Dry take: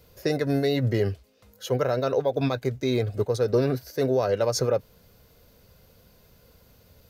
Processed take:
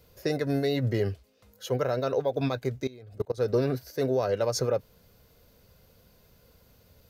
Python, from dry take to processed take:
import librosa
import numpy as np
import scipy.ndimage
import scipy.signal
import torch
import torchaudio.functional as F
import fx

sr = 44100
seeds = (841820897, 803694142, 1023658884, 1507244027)

y = fx.level_steps(x, sr, step_db=22, at=(2.87, 3.38))
y = y * librosa.db_to_amplitude(-3.0)